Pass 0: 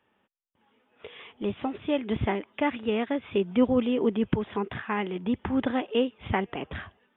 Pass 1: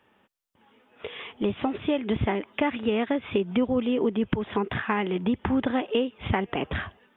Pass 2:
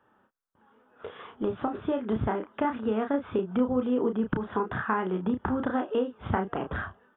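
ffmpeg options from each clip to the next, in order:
-af "acompressor=threshold=-29dB:ratio=4,volume=7dB"
-filter_complex "[0:a]highshelf=f=1.8k:t=q:w=3:g=-7,asplit=2[a][b];[b]adelay=32,volume=-6.5dB[c];[a][c]amix=inputs=2:normalize=0,volume=-3.5dB"

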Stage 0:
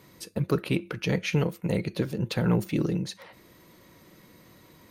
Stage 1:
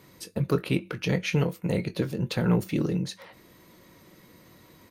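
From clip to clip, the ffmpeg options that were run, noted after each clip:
-filter_complex "[0:a]asplit=2[a][b];[b]adelay=22,volume=-11.5dB[c];[a][c]amix=inputs=2:normalize=0"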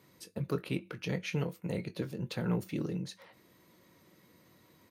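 -af "highpass=76,volume=-8.5dB"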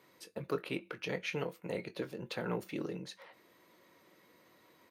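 -af "bass=f=250:g=-14,treble=f=4k:g=-6,volume=2dB"

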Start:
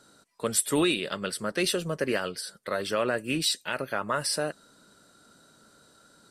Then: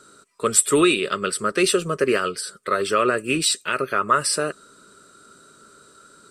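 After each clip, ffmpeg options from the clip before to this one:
-af "equalizer=f=400:t=o:w=0.33:g=10,equalizer=f=800:t=o:w=0.33:g=-9,equalizer=f=1.25k:t=o:w=0.33:g=12,equalizer=f=2.5k:t=o:w=0.33:g=5,equalizer=f=8k:t=o:w=0.33:g=9,equalizer=f=12.5k:t=o:w=0.33:g=-4,volume=3.5dB"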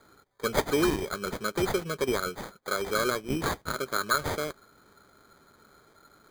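-af "acrusher=samples=16:mix=1:aa=0.000001,volume=-8dB"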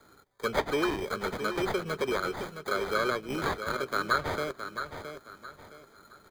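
-filter_complex "[0:a]acrossover=split=420|900|4200[a][b][c][d];[a]asoftclip=type=tanh:threshold=-33dB[e];[d]acompressor=threshold=-48dB:ratio=6[f];[e][b][c][f]amix=inputs=4:normalize=0,aecho=1:1:667|1334|2001|2668:0.355|0.11|0.0341|0.0106"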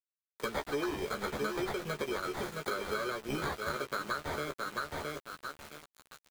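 -filter_complex "[0:a]acompressor=threshold=-35dB:ratio=10,aeval=exprs='val(0)*gte(abs(val(0)),0.00501)':c=same,asplit=2[a][b];[b]adelay=14,volume=-5dB[c];[a][c]amix=inputs=2:normalize=0,volume=2.5dB"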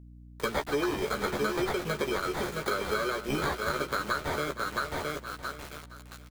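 -af "aecho=1:1:469|938:0.2|0.0299,aeval=exprs='val(0)+0.00224*(sin(2*PI*60*n/s)+sin(2*PI*2*60*n/s)/2+sin(2*PI*3*60*n/s)/3+sin(2*PI*4*60*n/s)/4+sin(2*PI*5*60*n/s)/5)':c=same,volume=5dB"

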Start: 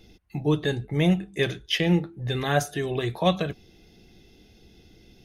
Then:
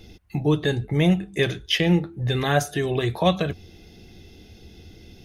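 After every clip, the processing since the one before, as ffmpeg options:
-filter_complex "[0:a]equalizer=f=86:w=3.8:g=9,asplit=2[a][b];[b]acompressor=threshold=-30dB:ratio=6,volume=0dB[c];[a][c]amix=inputs=2:normalize=0"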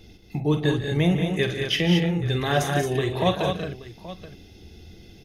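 -af "aecho=1:1:47|146|186|222|827:0.316|0.211|0.422|0.501|0.158,volume=-2.5dB"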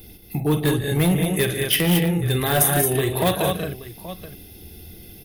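-af "asoftclip=type=hard:threshold=-17dB,aexciter=amount=13.4:drive=5.2:freq=9.1k,volume=3dB"

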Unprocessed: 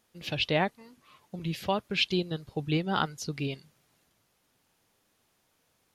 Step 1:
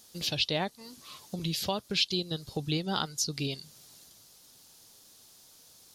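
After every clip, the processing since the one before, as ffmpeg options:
-af "highshelf=f=3.2k:t=q:w=1.5:g=10.5,acompressor=threshold=-43dB:ratio=2,volume=7dB"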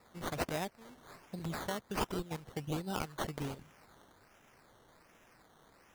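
-af "acrusher=samples=14:mix=1:aa=0.000001:lfo=1:lforange=8.4:lforate=1.3,volume=-6.5dB"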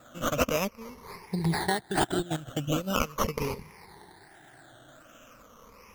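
-af "afftfilt=real='re*pow(10,15/40*sin(2*PI*(0.85*log(max(b,1)*sr/1024/100)/log(2)-(-0.4)*(pts-256)/sr)))':imag='im*pow(10,15/40*sin(2*PI*(0.85*log(max(b,1)*sr/1024/100)/log(2)-(-0.4)*(pts-256)/sr)))':win_size=1024:overlap=0.75,volume=7.5dB"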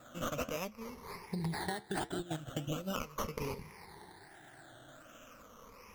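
-af "acompressor=threshold=-31dB:ratio=12,flanger=delay=7:depth=5.7:regen=-78:speed=1.4:shape=sinusoidal,volume=2dB"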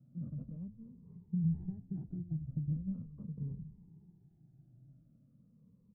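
-filter_complex "[0:a]asuperpass=centerf=150:order=4:qfactor=2,asplit=6[a][b][c][d][e][f];[b]adelay=91,afreqshift=-87,volume=-18dB[g];[c]adelay=182,afreqshift=-174,volume=-23dB[h];[d]adelay=273,afreqshift=-261,volume=-28.1dB[i];[e]adelay=364,afreqshift=-348,volume=-33.1dB[j];[f]adelay=455,afreqshift=-435,volume=-38.1dB[k];[a][g][h][i][j][k]amix=inputs=6:normalize=0,volume=6dB"

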